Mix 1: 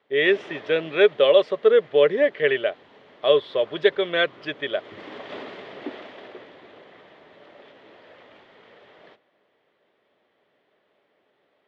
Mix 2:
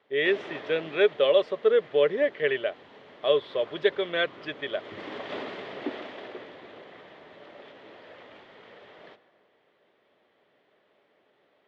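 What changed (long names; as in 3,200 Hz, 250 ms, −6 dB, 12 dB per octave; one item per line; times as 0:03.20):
speech −5.0 dB
background: send +8.5 dB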